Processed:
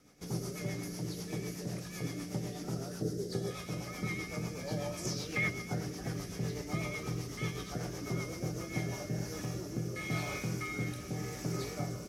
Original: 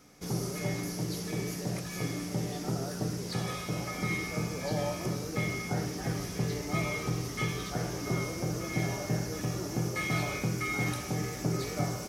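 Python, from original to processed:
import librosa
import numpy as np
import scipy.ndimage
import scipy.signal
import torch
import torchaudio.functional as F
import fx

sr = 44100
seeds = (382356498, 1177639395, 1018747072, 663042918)

y = fx.peak_eq(x, sr, hz=fx.line((4.97, 9200.0), (5.48, 1600.0)), db=14.5, octaves=0.97, at=(4.97, 5.48), fade=0.02)
y = fx.rotary_switch(y, sr, hz=8.0, then_hz=0.9, switch_at_s=8.43)
y = fx.graphic_eq_15(y, sr, hz=(400, 1000, 2500), db=(10, -10, -11), at=(3.02, 3.51))
y = y * 10.0 ** (-3.0 / 20.0)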